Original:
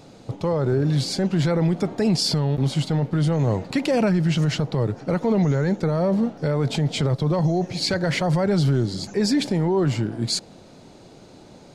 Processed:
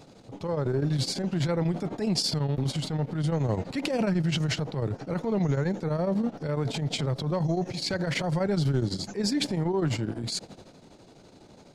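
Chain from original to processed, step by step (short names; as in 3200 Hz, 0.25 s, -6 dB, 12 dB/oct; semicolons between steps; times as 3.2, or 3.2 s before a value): tremolo triangle 12 Hz, depth 90%; transient shaper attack -9 dB, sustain +4 dB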